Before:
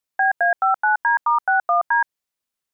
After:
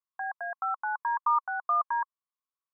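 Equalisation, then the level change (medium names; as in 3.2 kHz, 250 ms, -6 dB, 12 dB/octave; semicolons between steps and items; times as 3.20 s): band-pass filter 1.1 kHz, Q 11; distance through air 360 m; +4.5 dB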